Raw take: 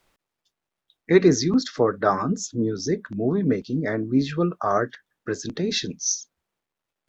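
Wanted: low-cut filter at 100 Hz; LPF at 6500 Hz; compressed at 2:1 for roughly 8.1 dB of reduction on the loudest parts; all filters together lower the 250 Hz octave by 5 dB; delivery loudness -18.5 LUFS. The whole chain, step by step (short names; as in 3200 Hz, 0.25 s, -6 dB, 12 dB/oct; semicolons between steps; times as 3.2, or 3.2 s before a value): HPF 100 Hz; LPF 6500 Hz; bell 250 Hz -7 dB; compressor 2:1, threshold -29 dBFS; gain +13 dB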